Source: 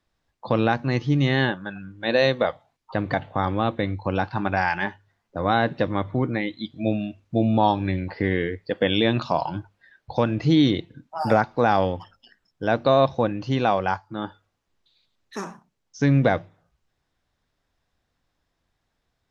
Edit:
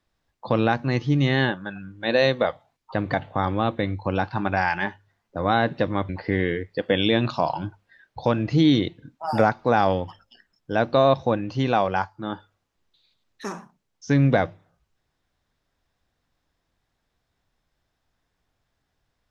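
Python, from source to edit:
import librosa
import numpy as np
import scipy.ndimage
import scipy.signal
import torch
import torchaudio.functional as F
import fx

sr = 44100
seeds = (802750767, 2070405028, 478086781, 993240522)

y = fx.edit(x, sr, fx.cut(start_s=6.09, length_s=1.92), tone=tone)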